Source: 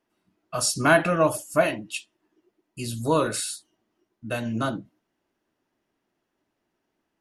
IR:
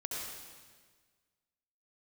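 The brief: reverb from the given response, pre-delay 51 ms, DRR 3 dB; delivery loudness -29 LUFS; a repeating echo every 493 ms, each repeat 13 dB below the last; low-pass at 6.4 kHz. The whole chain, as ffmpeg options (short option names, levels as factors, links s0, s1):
-filter_complex "[0:a]lowpass=6400,aecho=1:1:493|986|1479:0.224|0.0493|0.0108,asplit=2[s0][s1];[1:a]atrim=start_sample=2205,adelay=51[s2];[s1][s2]afir=irnorm=-1:irlink=0,volume=0.562[s3];[s0][s3]amix=inputs=2:normalize=0,volume=0.562"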